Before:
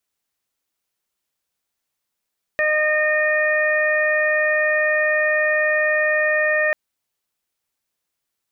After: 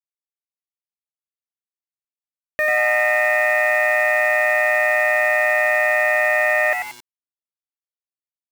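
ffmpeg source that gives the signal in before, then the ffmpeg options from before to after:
-f lavfi -i "aevalsrc='0.1*sin(2*PI*612*t)+0.0282*sin(2*PI*1224*t)+0.126*sin(2*PI*1836*t)+0.0398*sin(2*PI*2448*t)':d=4.14:s=44100"
-filter_complex "[0:a]asplit=2[a][b];[b]asplit=4[c][d][e][f];[c]adelay=91,afreqshift=120,volume=-6dB[g];[d]adelay=182,afreqshift=240,volume=-14.9dB[h];[e]adelay=273,afreqshift=360,volume=-23.7dB[i];[f]adelay=364,afreqshift=480,volume=-32.6dB[j];[g][h][i][j]amix=inputs=4:normalize=0[k];[a][k]amix=inputs=2:normalize=0,acrusher=bits=5:mix=0:aa=0.000001"

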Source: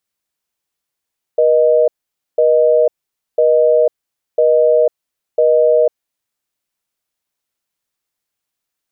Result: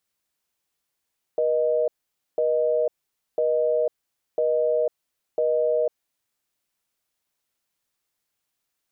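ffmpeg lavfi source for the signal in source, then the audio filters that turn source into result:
-f lavfi -i "aevalsrc='0.282*(sin(2*PI*480*t)+sin(2*PI*620*t))*clip(min(mod(t,1),0.5-mod(t,1))/0.005,0,1)':d=4.9:s=44100"
-af "alimiter=limit=-16dB:level=0:latency=1:release=37"

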